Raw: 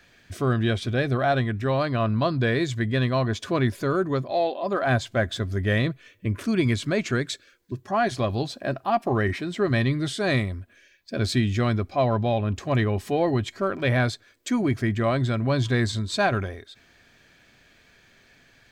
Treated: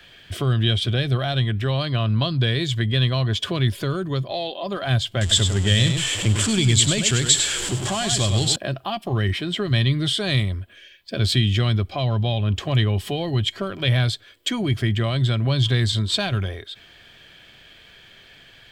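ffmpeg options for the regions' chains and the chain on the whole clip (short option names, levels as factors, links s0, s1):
-filter_complex "[0:a]asettb=1/sr,asplit=3[s0][s1][s2];[s0]atrim=end=5.214[s3];[s1]atrim=start=5.21:end=8.56,asetpts=PTS-STARTPTS,afade=t=in:d=0.004:c=qsin,afade=t=out:st=3.346:d=0.004:c=qsin,aeval=exprs='val(0)+0.5*0.0316*sgn(val(0))':c=same,lowpass=f=7500:t=q:w=7.4,aecho=1:1:100:0.398,atrim=end_sample=147735[s4];[s2]atrim=start=8.556[s5];[s3][s4]acrossfade=d=0.004:c1=hsin:c2=qsin[s6];[s6][s5]acrossfade=d=0.004:c1=qsin:c2=hsin,equalizer=f=250:t=o:w=0.33:g=-7,equalizer=f=3150:t=o:w=0.33:g=12,equalizer=f=6300:t=o:w=0.33:g=-6,acrossover=split=210|3000[s7][s8][s9];[s8]acompressor=threshold=0.0224:ratio=6[s10];[s7][s10][s9]amix=inputs=3:normalize=0,volume=2"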